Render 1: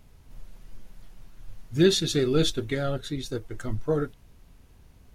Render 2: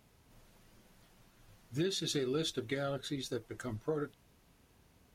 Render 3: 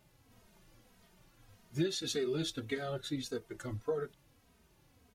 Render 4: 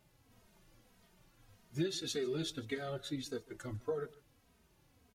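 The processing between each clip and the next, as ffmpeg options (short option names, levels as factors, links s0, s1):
-af "highpass=f=200:p=1,acompressor=threshold=0.0447:ratio=6,volume=0.631"
-filter_complex "[0:a]asplit=2[s0][s1];[s1]adelay=2.9,afreqshift=-1.7[s2];[s0][s2]amix=inputs=2:normalize=1,volume=1.33"
-af "aecho=1:1:148:0.0841,volume=0.75"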